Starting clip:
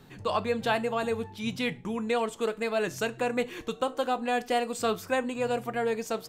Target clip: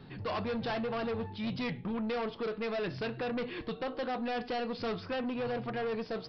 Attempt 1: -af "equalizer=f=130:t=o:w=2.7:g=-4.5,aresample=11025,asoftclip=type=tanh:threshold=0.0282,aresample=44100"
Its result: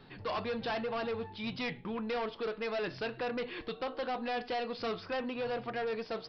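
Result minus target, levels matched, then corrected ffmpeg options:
125 Hz band -5.5 dB
-af "equalizer=f=130:t=o:w=2.7:g=4,aresample=11025,asoftclip=type=tanh:threshold=0.0282,aresample=44100"

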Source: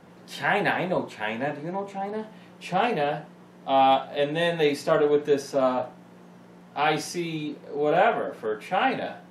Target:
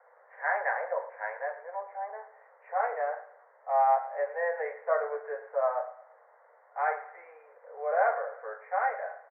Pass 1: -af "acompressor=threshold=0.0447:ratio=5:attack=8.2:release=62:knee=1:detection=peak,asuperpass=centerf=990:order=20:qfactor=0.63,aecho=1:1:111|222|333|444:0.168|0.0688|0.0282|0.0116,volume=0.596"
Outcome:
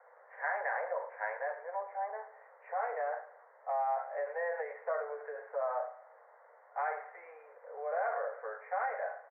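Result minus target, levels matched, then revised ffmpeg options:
compression: peak gain reduction +10 dB
-af "asuperpass=centerf=990:order=20:qfactor=0.63,aecho=1:1:111|222|333|444:0.168|0.0688|0.0282|0.0116,volume=0.596"

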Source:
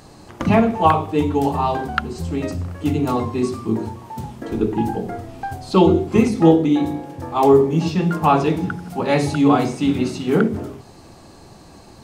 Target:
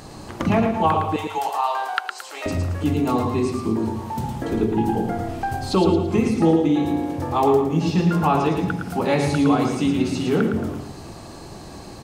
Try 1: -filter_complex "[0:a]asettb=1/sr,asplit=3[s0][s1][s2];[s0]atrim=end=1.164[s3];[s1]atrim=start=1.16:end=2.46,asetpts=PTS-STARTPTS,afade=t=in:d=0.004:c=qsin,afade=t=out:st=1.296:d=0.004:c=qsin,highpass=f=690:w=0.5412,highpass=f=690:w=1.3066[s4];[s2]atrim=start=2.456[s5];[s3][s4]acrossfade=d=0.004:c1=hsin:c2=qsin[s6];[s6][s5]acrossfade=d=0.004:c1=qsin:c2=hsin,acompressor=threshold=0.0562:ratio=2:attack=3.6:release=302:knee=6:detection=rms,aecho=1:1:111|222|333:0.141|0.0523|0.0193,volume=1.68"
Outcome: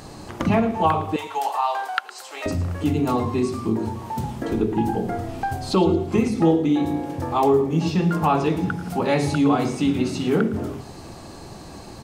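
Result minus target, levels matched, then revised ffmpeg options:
echo-to-direct -11 dB
-filter_complex "[0:a]asettb=1/sr,asplit=3[s0][s1][s2];[s0]atrim=end=1.164[s3];[s1]atrim=start=1.16:end=2.46,asetpts=PTS-STARTPTS,afade=t=in:d=0.004:c=qsin,afade=t=out:st=1.296:d=0.004:c=qsin,highpass=f=690:w=0.5412,highpass=f=690:w=1.3066[s4];[s2]atrim=start=2.456[s5];[s3][s4]acrossfade=d=0.004:c1=hsin:c2=qsin[s6];[s6][s5]acrossfade=d=0.004:c1=qsin:c2=hsin,acompressor=threshold=0.0562:ratio=2:attack=3.6:release=302:knee=6:detection=rms,aecho=1:1:111|222|333|444:0.501|0.185|0.0686|0.0254,volume=1.68"

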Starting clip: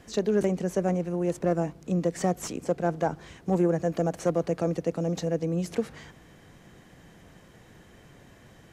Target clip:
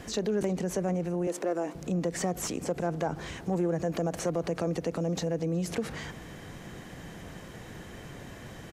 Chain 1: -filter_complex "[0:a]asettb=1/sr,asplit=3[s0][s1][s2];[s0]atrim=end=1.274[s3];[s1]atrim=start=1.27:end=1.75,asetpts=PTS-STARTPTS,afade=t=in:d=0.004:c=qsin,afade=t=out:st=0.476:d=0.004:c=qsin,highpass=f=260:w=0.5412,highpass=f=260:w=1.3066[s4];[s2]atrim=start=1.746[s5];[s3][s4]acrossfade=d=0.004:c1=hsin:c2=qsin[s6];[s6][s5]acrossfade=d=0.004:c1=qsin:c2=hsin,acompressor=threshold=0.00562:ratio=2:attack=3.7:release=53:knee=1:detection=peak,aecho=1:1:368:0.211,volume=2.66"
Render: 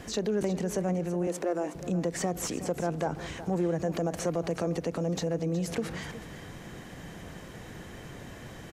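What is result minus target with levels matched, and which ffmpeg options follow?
echo-to-direct +12 dB
-filter_complex "[0:a]asettb=1/sr,asplit=3[s0][s1][s2];[s0]atrim=end=1.274[s3];[s1]atrim=start=1.27:end=1.75,asetpts=PTS-STARTPTS,afade=t=in:d=0.004:c=qsin,afade=t=out:st=0.476:d=0.004:c=qsin,highpass=f=260:w=0.5412,highpass=f=260:w=1.3066[s4];[s2]atrim=start=1.746[s5];[s3][s4]acrossfade=d=0.004:c1=hsin:c2=qsin[s6];[s6][s5]acrossfade=d=0.004:c1=qsin:c2=hsin,acompressor=threshold=0.00562:ratio=2:attack=3.7:release=53:knee=1:detection=peak,aecho=1:1:368:0.0531,volume=2.66"

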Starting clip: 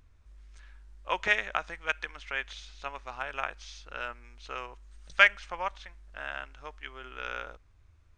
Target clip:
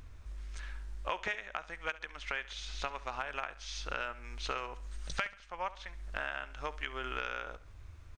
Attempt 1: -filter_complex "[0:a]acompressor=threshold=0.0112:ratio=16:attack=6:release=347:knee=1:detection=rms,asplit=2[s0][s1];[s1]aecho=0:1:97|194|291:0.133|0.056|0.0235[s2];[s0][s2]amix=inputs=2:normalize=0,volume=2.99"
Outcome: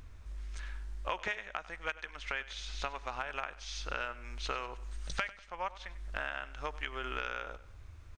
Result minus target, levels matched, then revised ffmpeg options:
echo 28 ms late
-filter_complex "[0:a]acompressor=threshold=0.0112:ratio=16:attack=6:release=347:knee=1:detection=rms,asplit=2[s0][s1];[s1]aecho=0:1:69|138|207:0.133|0.056|0.0235[s2];[s0][s2]amix=inputs=2:normalize=0,volume=2.99"

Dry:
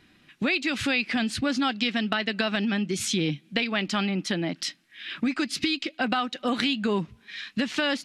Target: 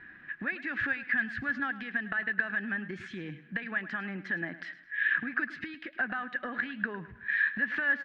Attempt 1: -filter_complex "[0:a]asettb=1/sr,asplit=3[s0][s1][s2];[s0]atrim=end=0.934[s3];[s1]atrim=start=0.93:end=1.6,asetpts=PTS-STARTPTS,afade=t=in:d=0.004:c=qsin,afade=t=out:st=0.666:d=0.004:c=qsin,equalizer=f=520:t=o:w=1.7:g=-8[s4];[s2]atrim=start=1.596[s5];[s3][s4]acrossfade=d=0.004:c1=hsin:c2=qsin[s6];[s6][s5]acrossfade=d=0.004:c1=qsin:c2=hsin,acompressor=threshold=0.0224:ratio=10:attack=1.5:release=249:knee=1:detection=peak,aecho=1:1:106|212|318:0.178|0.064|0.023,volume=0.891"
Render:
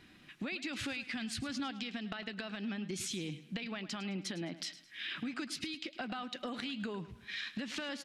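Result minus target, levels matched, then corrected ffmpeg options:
2 kHz band -7.5 dB
-filter_complex "[0:a]asettb=1/sr,asplit=3[s0][s1][s2];[s0]atrim=end=0.934[s3];[s1]atrim=start=0.93:end=1.6,asetpts=PTS-STARTPTS,afade=t=in:d=0.004:c=qsin,afade=t=out:st=0.666:d=0.004:c=qsin,equalizer=f=520:t=o:w=1.7:g=-8[s4];[s2]atrim=start=1.596[s5];[s3][s4]acrossfade=d=0.004:c1=hsin:c2=qsin[s6];[s6][s5]acrossfade=d=0.004:c1=qsin:c2=hsin,acompressor=threshold=0.0224:ratio=10:attack=1.5:release=249:knee=1:detection=peak,lowpass=f=1700:t=q:w=14,aecho=1:1:106|212|318:0.178|0.064|0.023,volume=0.891"

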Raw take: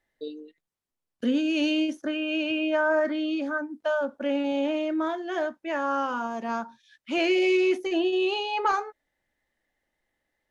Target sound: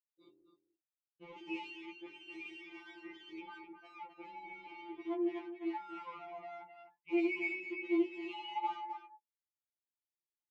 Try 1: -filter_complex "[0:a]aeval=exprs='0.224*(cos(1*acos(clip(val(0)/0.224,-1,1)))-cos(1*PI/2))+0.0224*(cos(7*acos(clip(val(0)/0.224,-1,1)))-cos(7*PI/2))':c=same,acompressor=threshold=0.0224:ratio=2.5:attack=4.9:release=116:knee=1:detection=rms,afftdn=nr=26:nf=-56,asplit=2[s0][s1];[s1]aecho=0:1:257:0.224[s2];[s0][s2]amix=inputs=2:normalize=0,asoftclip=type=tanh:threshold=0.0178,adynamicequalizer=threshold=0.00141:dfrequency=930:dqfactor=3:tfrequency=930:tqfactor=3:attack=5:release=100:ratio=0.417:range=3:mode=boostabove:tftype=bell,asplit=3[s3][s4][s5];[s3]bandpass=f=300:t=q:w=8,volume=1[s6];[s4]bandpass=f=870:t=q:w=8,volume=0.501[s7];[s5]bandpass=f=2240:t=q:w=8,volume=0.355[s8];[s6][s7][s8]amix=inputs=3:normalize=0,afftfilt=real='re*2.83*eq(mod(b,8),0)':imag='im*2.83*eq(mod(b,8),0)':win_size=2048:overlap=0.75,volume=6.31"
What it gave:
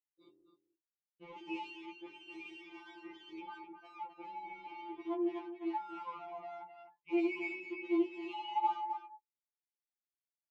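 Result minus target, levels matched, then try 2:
1 kHz band +4.0 dB
-filter_complex "[0:a]aeval=exprs='0.224*(cos(1*acos(clip(val(0)/0.224,-1,1)))-cos(1*PI/2))+0.0224*(cos(7*acos(clip(val(0)/0.224,-1,1)))-cos(7*PI/2))':c=same,acompressor=threshold=0.0224:ratio=2.5:attack=4.9:release=116:knee=1:detection=rms,afftdn=nr=26:nf=-56,asplit=2[s0][s1];[s1]aecho=0:1:257:0.224[s2];[s0][s2]amix=inputs=2:normalize=0,asoftclip=type=tanh:threshold=0.0178,adynamicequalizer=threshold=0.00141:dfrequency=2000:dqfactor=3:tfrequency=2000:tqfactor=3:attack=5:release=100:ratio=0.417:range=3:mode=boostabove:tftype=bell,asplit=3[s3][s4][s5];[s3]bandpass=f=300:t=q:w=8,volume=1[s6];[s4]bandpass=f=870:t=q:w=8,volume=0.501[s7];[s5]bandpass=f=2240:t=q:w=8,volume=0.355[s8];[s6][s7][s8]amix=inputs=3:normalize=0,afftfilt=real='re*2.83*eq(mod(b,8),0)':imag='im*2.83*eq(mod(b,8),0)':win_size=2048:overlap=0.75,volume=6.31"

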